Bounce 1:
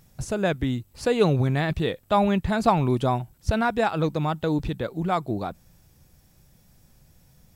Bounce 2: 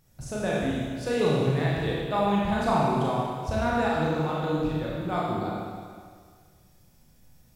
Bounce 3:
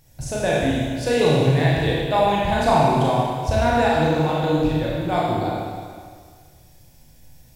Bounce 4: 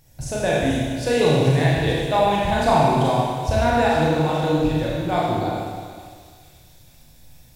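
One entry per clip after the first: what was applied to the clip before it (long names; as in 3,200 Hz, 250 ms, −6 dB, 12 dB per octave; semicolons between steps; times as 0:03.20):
four-comb reverb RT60 1.9 s, combs from 26 ms, DRR −5.5 dB; level −8.5 dB
thirty-one-band graphic EQ 200 Hz −11 dB, 400 Hz −5 dB, 1,250 Hz −11 dB; level +9 dB
delay with a high-pass on its return 439 ms, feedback 70%, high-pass 5,400 Hz, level −7.5 dB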